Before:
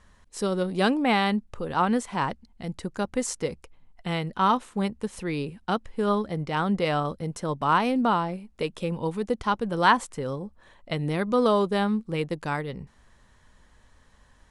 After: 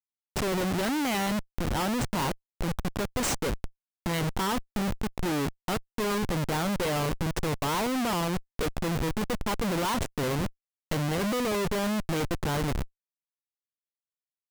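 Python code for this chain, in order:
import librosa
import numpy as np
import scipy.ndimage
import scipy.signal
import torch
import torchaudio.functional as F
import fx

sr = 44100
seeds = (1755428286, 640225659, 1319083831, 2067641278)

y = fx.dynamic_eq(x, sr, hz=530.0, q=0.86, threshold_db=-37.0, ratio=4.0, max_db=-4, at=(1.04, 1.79))
y = fx.schmitt(y, sr, flips_db=-32.5)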